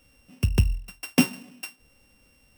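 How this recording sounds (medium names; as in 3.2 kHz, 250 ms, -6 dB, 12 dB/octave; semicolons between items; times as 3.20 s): a buzz of ramps at a fixed pitch in blocks of 16 samples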